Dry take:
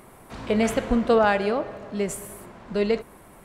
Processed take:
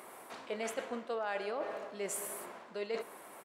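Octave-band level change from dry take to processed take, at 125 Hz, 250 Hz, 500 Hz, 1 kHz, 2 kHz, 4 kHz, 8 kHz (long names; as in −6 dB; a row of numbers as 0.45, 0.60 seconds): below −20 dB, −22.0 dB, −14.5 dB, −14.0 dB, −13.0 dB, −11.5 dB, −4.5 dB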